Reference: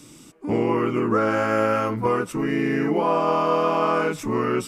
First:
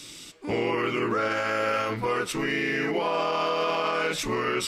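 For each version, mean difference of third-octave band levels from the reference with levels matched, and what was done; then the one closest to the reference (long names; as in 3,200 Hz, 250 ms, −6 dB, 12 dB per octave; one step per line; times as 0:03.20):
5.0 dB: octave-band graphic EQ 125/250/1,000/2,000/4,000 Hz −6/−8/−4/+4/+11 dB
brickwall limiter −19.5 dBFS, peak gain reduction 9.5 dB
flanger 1.4 Hz, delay 7 ms, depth 8 ms, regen −82%
level +6.5 dB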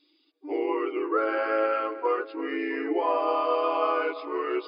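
10.0 dB: spectral dynamics exaggerated over time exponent 1.5
linear-phase brick-wall band-pass 280–5,100 Hz
on a send: feedback echo with a low-pass in the loop 338 ms, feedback 53%, low-pass 2,800 Hz, level −15 dB
on the sum: level −2 dB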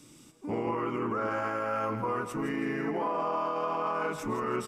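3.0 dB: dynamic equaliser 1,000 Hz, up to +7 dB, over −34 dBFS, Q 0.88
brickwall limiter −15 dBFS, peak gain reduction 10.5 dB
repeating echo 164 ms, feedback 40%, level −10.5 dB
level −8 dB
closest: third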